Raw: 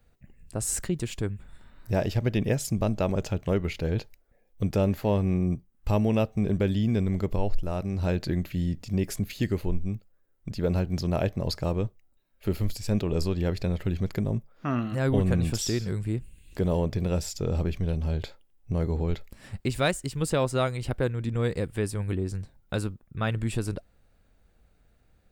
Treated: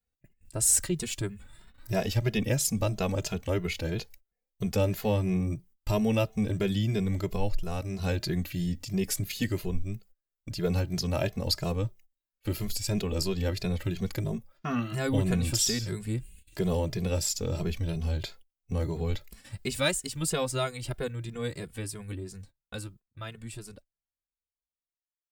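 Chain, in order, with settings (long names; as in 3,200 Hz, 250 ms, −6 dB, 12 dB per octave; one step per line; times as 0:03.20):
fade-out on the ending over 6.47 s
noise gate −48 dBFS, range −22 dB
high-shelf EQ 2,600 Hz +11 dB
barber-pole flanger 2.4 ms +3 Hz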